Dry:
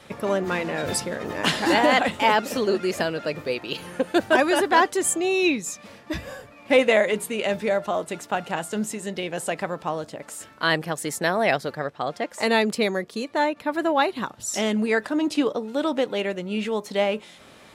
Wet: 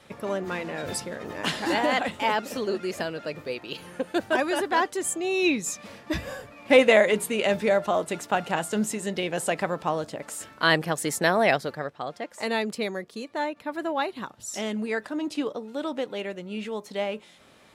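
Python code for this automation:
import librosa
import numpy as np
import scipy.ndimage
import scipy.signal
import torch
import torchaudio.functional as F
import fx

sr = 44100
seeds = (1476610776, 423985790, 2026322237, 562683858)

y = fx.gain(x, sr, db=fx.line((5.18, -5.5), (5.68, 1.0), (11.38, 1.0), (12.13, -6.5)))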